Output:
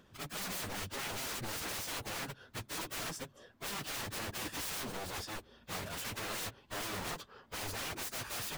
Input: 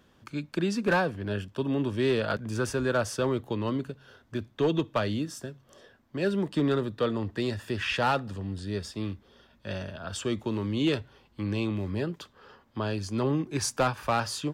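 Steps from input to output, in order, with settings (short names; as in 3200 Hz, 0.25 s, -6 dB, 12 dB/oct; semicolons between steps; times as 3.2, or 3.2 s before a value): wrapped overs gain 32.5 dB; plain phase-vocoder stretch 0.59×; gain +1 dB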